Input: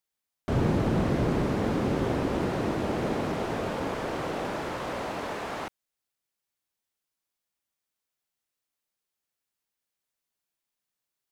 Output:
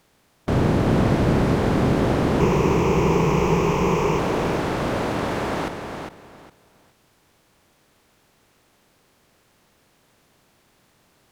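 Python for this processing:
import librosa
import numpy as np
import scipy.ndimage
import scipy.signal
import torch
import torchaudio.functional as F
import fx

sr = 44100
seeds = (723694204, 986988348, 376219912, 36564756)

y = fx.bin_compress(x, sr, power=0.6)
y = fx.ripple_eq(y, sr, per_octave=0.76, db=14, at=(2.4, 4.19))
y = fx.echo_feedback(y, sr, ms=408, feedback_pct=22, wet_db=-6.5)
y = fx.end_taper(y, sr, db_per_s=390.0)
y = y * 10.0 ** (3.5 / 20.0)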